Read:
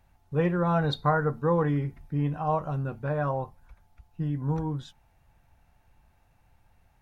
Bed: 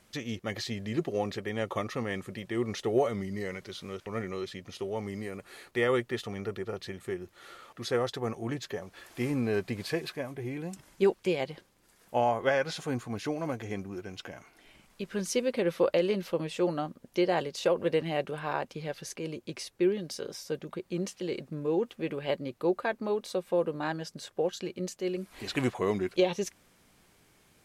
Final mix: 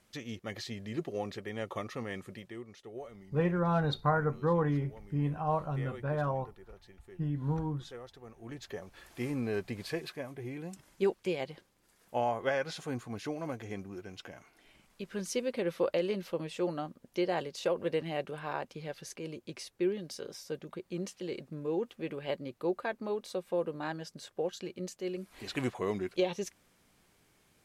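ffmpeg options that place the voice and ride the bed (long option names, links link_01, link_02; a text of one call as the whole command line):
ffmpeg -i stem1.wav -i stem2.wav -filter_complex "[0:a]adelay=3000,volume=-4dB[link_01];[1:a]volume=8dB,afade=type=out:start_time=2.33:duration=0.32:silence=0.237137,afade=type=in:start_time=8.34:duration=0.44:silence=0.211349[link_02];[link_01][link_02]amix=inputs=2:normalize=0" out.wav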